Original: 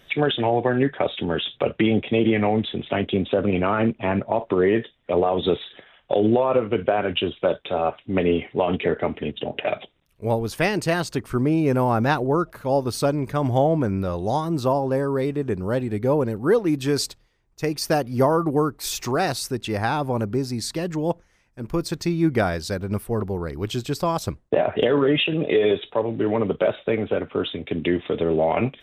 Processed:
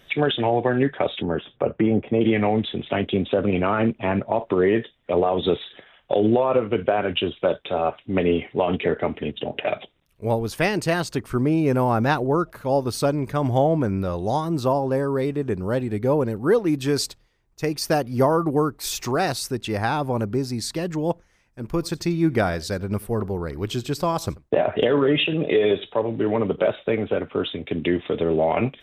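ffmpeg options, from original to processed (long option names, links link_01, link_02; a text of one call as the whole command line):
ffmpeg -i in.wav -filter_complex "[0:a]asettb=1/sr,asplit=3[link_01][link_02][link_03];[link_01]atrim=end=1.224[link_04];[link_02]atrim=start=1.22:end=2.21,asetpts=PTS-STARTPTS,afade=type=in:duration=0.004:curve=qsin,afade=type=out:start_time=0.986:duration=0.004:curve=qsin,lowpass=1400[link_05];[link_03]atrim=start=2.206[link_06];[link_04][link_05]acrossfade=duration=0.004:curve1=hsin:curve2=qsin[link_07];[link_07][link_06]acrossfade=duration=0.004:curve1=qsin:curve2=hsin,asettb=1/sr,asplit=3[link_08][link_09][link_10];[link_08]atrim=end=21.704[link_11];[link_09]atrim=start=21.7:end=26.63,asetpts=PTS-STARTPTS,afade=type=in:duration=0.004:curve=qsin,afade=type=out:start_time=4.926:duration=0.004:curve=qsin,aecho=1:1:87:0.0794,atrim=end_sample=217413[link_12];[link_10]atrim=start=26.626[link_13];[link_11][link_12]acrossfade=duration=0.004:curve1=hsin:curve2=qsin[link_14];[link_14][link_13]acrossfade=duration=0.004:curve1=qsin:curve2=hsin" out.wav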